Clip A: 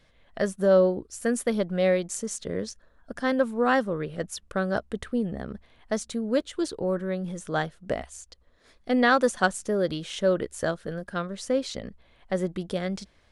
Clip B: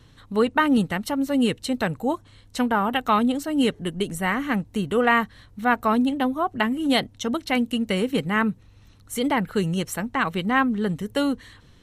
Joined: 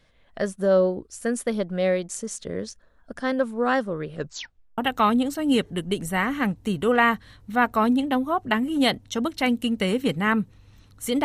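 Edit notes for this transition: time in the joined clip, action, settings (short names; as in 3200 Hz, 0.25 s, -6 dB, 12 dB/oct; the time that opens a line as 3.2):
clip A
4.15 tape stop 0.63 s
4.78 switch to clip B from 2.87 s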